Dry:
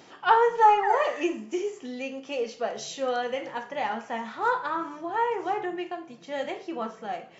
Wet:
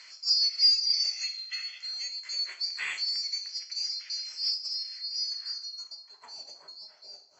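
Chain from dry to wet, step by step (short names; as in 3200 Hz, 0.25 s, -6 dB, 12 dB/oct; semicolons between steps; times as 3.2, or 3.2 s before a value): band-swap scrambler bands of 4000 Hz; in parallel at +2 dB: compressor, threshold -37 dBFS, peak gain reduction 21.5 dB; on the sum: band-pass sweep 2300 Hz -> 720 Hz, 4.95–6.64; 0.52–2.19 comb 1.5 ms, depth 52%; gain +5.5 dB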